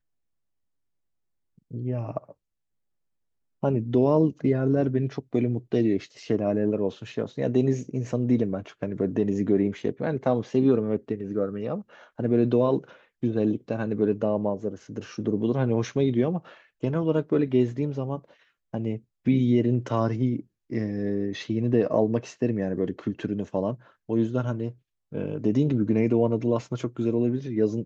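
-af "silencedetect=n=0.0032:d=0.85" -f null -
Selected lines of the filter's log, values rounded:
silence_start: 0.00
silence_end: 1.58 | silence_duration: 1.58
silence_start: 2.32
silence_end: 3.63 | silence_duration: 1.31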